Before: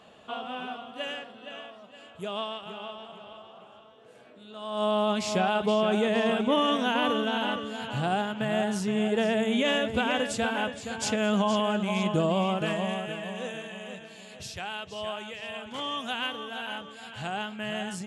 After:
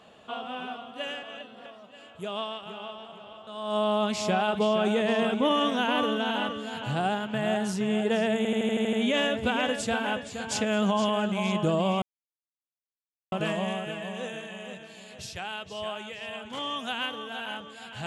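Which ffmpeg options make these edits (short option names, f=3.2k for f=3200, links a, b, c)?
-filter_complex "[0:a]asplit=12[a][b][c][d][e][f][g][h][i][j][k][l];[a]atrim=end=1.232[m];[b]atrim=start=1.228:end=1.662,asetpts=PTS-STARTPTS,areverse[n];[c]atrim=start=1.658:end=3.472[o];[d]atrim=start=4.538:end=9.522[p];[e]atrim=start=9.438:end=9.522[q];[f]atrim=start=9.438:end=9.522[r];[g]atrim=start=9.438:end=9.522[s];[h]atrim=start=9.438:end=9.522[t];[i]atrim=start=9.438:end=9.522[u];[j]atrim=start=9.438:end=9.522[v];[k]atrim=start=9.438:end=12.53,asetpts=PTS-STARTPTS,afade=t=out:st=3.088:d=0.004:c=hsin,apad=pad_dur=1.3[w];[l]atrim=start=12.53,asetpts=PTS-STARTPTS,afade=t=in:d=0.004:c=hsin[x];[m][n]acrossfade=d=0.004:c1=hsin:c2=hsin[y];[y][o]acrossfade=d=0.004:c1=hsin:c2=hsin[z];[z][p]acrossfade=d=0.004:c1=hsin:c2=hsin[aa];[aa][q]acrossfade=d=0.004:c1=hsin:c2=hsin[ab];[ab][r]acrossfade=d=0.004:c1=hsin:c2=hsin[ac];[ac][s]acrossfade=d=0.004:c1=hsin:c2=hsin[ad];[ad][t]acrossfade=d=0.004:c1=hsin:c2=hsin[ae];[ae][u]acrossfade=d=0.004:c1=hsin:c2=hsin[af];[af][v]acrossfade=d=0.004:c1=hsin:c2=hsin[ag];[w][x]concat=n=2:v=0:a=1[ah];[ag][ah]acrossfade=d=0.004:c1=hsin:c2=hsin"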